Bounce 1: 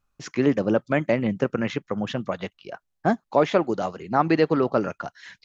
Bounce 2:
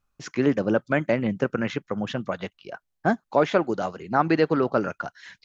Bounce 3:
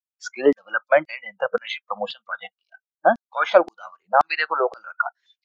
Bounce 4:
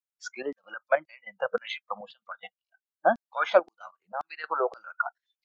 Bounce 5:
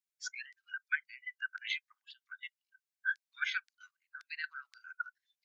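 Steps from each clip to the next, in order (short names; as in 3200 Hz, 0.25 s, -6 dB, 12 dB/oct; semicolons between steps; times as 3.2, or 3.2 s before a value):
dynamic EQ 1500 Hz, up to +6 dB, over -47 dBFS, Q 6.6; gain -1 dB
spectral noise reduction 29 dB; LFO high-pass saw down 1.9 Hz 350–4900 Hz; gain +3.5 dB
step gate "xxxx..x.x...xxx" 142 bpm -12 dB; gain -5.5 dB
rippled Chebyshev high-pass 1500 Hz, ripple 3 dB; gain +1 dB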